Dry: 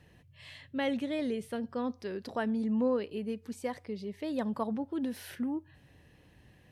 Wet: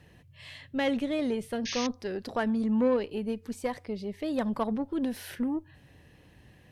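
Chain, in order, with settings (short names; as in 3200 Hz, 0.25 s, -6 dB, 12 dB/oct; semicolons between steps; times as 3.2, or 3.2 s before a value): added harmonics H 6 -25 dB, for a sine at -19.5 dBFS; painted sound noise, 1.65–1.87, 1600–6600 Hz -39 dBFS; gain +3.5 dB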